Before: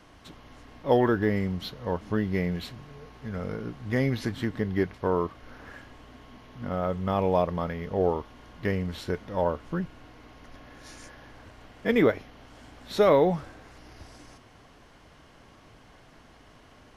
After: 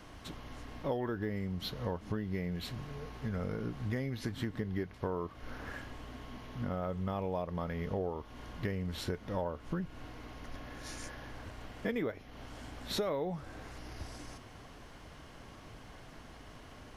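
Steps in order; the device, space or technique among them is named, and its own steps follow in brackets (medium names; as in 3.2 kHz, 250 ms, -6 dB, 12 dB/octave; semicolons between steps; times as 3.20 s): ASMR close-microphone chain (bass shelf 130 Hz +4 dB; compression 6:1, threshold -34 dBFS, peak gain reduction 17 dB; treble shelf 9.6 kHz +4.5 dB); trim +1 dB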